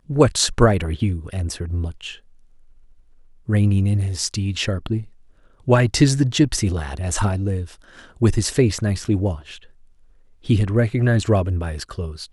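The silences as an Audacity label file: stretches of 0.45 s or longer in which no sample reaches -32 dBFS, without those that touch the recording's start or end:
2.150000	3.480000	silence
5.030000	5.670000	silence
9.580000	10.460000	silence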